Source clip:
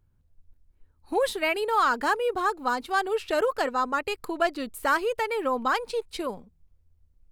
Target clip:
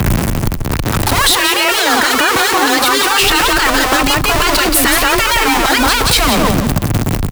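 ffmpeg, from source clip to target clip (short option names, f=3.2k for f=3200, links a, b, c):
-filter_complex "[0:a]aeval=exprs='val(0)+0.5*0.0473*sgn(val(0))':c=same,afreqshift=22,asettb=1/sr,asplit=3[a][b][c];[a]atrim=end=1.134[d];[b]atrim=start=1.13:end=3.21,asetpts=PTS-STARTPTS,afade=t=in:d=0.004:c=qsin,afade=t=out:st=2.076:d=0.004:c=qsin,highpass=f=290:p=1[e];[c]atrim=start=3.206[f];[d][e]acrossfade=d=0.004:c1=hsin:c2=qsin[g];[g][f]acrossfade=d=0.004:c1=qsin:c2=hsin,aecho=1:1:176|352|528:0.447|0.0804|0.0145,afftfilt=real='re*lt(hypot(re,im),0.251)':imag='im*lt(hypot(re,im),0.251)':win_size=1024:overlap=0.75,adynamicequalizer=threshold=0.00282:dfrequency=490:dqfactor=2.3:tfrequency=490:tqfactor=2.3:attack=5:release=100:ratio=0.375:range=2.5:mode=cutabove:tftype=bell,alimiter=level_in=24dB:limit=-1dB:release=50:level=0:latency=1,volume=-1dB"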